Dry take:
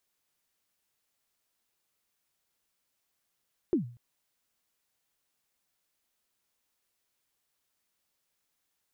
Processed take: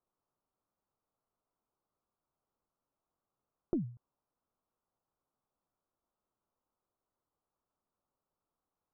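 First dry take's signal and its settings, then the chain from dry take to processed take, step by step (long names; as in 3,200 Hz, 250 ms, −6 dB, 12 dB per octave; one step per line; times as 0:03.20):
synth kick length 0.24 s, from 390 Hz, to 120 Hz, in 117 ms, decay 0.43 s, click off, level −19.5 dB
stylus tracing distortion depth 0.094 ms
Butterworth low-pass 1,300 Hz 48 dB per octave
dynamic equaliser 510 Hz, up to −8 dB, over −43 dBFS, Q 0.77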